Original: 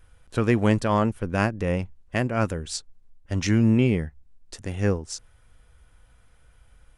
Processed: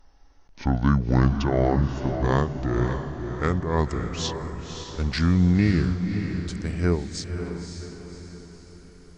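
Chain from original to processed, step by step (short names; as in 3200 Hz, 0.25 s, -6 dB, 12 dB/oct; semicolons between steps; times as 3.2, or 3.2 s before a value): speed glide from 55% -> 97%; diffused feedback echo 0.564 s, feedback 47%, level -7 dB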